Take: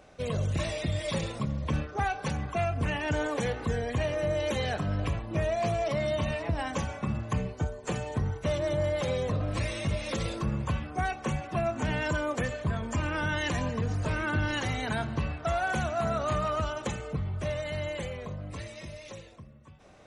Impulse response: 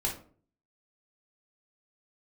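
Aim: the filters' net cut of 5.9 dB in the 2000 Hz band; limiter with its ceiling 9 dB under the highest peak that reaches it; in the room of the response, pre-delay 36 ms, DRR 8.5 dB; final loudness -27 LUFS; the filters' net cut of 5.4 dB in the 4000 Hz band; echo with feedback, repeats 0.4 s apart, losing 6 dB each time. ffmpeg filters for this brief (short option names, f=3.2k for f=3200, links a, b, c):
-filter_complex "[0:a]equalizer=f=2k:t=o:g=-7.5,equalizer=f=4k:t=o:g=-4,alimiter=level_in=5dB:limit=-24dB:level=0:latency=1,volume=-5dB,aecho=1:1:400|800|1200|1600|2000|2400:0.501|0.251|0.125|0.0626|0.0313|0.0157,asplit=2[a][b];[1:a]atrim=start_sample=2205,adelay=36[c];[b][c]afir=irnorm=-1:irlink=0,volume=-13.5dB[d];[a][d]amix=inputs=2:normalize=0,volume=8dB"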